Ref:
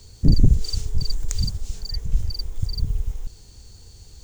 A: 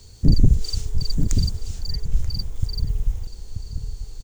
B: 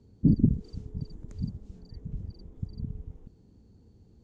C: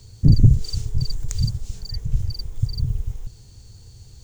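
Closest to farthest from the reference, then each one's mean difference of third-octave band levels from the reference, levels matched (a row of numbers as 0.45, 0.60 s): A, C, B; 2.0, 6.0, 10.5 dB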